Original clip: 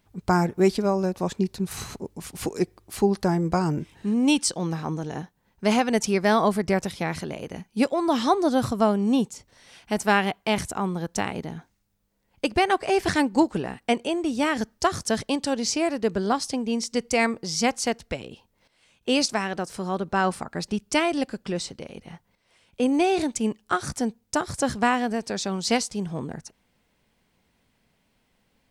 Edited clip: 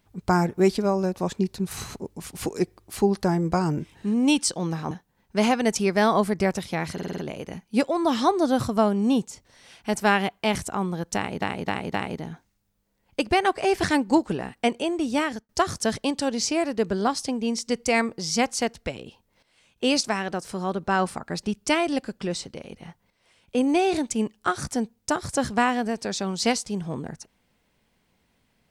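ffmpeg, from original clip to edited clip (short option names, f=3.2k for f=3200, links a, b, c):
-filter_complex "[0:a]asplit=11[a][b][c][d][e][f][g][h][i][j][k];[a]atrim=end=4.912[l];[b]atrim=start=5.188:end=7.262[m];[c]atrim=start=7.208:end=7.262[n];[d]atrim=start=7.208:end=7.262[o];[e]atrim=start=7.208:end=7.262[p];[f]atrim=start=7.208:end=7.262[q];[g]atrim=start=7.208:end=11.452[r];[h]atrim=start=11.188:end=11.452[s];[i]atrim=start=11.188:end=11.452[t];[j]atrim=start=11.188:end=14.74,asetpts=PTS-STARTPTS,afade=t=out:st=3.252:d=0.3[u];[k]atrim=start=14.74,asetpts=PTS-STARTPTS,afade=t=in:d=0.004:c=hsin[v];[l][m]acrossfade=d=0.004:c1=hsin:c2=hsin[w];[w][n]acrossfade=d=0.004:c1=hsin:c2=hsin[x];[x][o]acrossfade=d=0.004:c1=hsin:c2=hsin[y];[y][p]acrossfade=d=0.004:c1=hsin:c2=hsin[z];[z][q]acrossfade=d=0.004:c1=hsin:c2=hsin[aa];[aa][r]acrossfade=d=0.004:c1=hsin:c2=hsin[ab];[ab][s]acrossfade=d=0.004:c1=hsin:c2=hsin[ac];[ac][t]acrossfade=d=0.004:c1=hsin:c2=hsin[ad];[u][v]concat=n=2:v=0:a=1[ae];[ad][ae]acrossfade=d=0.004:c1=hsin:c2=hsin"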